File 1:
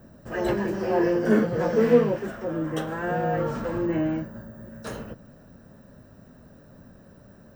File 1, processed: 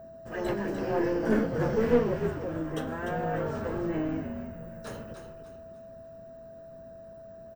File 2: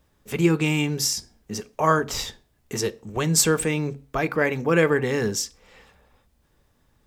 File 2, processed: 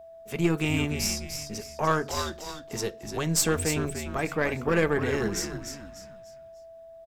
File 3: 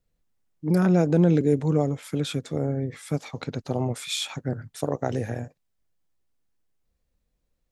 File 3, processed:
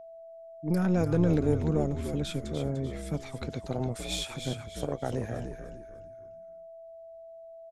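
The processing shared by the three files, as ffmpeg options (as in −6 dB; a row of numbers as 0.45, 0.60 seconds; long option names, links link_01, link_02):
-filter_complex "[0:a]aeval=exprs='0.596*(cos(1*acos(clip(val(0)/0.596,-1,1)))-cos(1*PI/2))+0.0376*(cos(6*acos(clip(val(0)/0.596,-1,1)))-cos(6*PI/2))':channel_layout=same,asplit=5[link_01][link_02][link_03][link_04][link_05];[link_02]adelay=297,afreqshift=-73,volume=-7.5dB[link_06];[link_03]adelay=594,afreqshift=-146,volume=-16.4dB[link_07];[link_04]adelay=891,afreqshift=-219,volume=-25.2dB[link_08];[link_05]adelay=1188,afreqshift=-292,volume=-34.1dB[link_09];[link_01][link_06][link_07][link_08][link_09]amix=inputs=5:normalize=0,aeval=exprs='val(0)+0.0112*sin(2*PI*660*n/s)':channel_layout=same,volume=-5.5dB"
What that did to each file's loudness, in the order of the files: −5.5, −4.5, −5.0 LU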